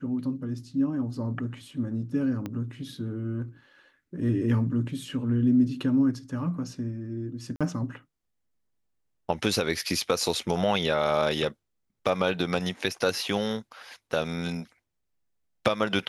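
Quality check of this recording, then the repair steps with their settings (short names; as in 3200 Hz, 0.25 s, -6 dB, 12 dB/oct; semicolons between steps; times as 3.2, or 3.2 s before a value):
2.46 pop -20 dBFS
7.56–7.61 gap 46 ms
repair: de-click; interpolate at 7.56, 46 ms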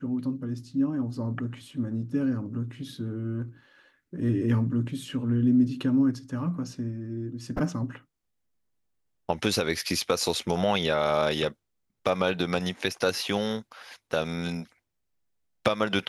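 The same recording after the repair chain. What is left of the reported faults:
2.46 pop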